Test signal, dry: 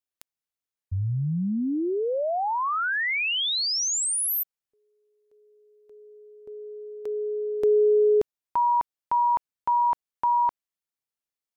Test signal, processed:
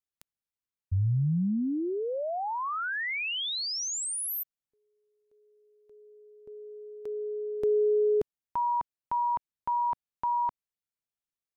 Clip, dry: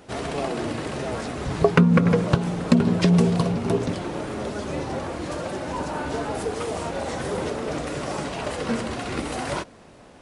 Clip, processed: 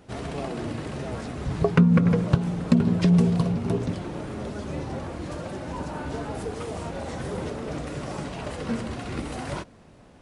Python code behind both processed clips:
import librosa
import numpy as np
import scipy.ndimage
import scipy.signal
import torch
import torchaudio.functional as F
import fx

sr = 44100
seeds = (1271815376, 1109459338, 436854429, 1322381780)

y = fx.bass_treble(x, sr, bass_db=7, treble_db=-1)
y = F.gain(torch.from_numpy(y), -6.0).numpy()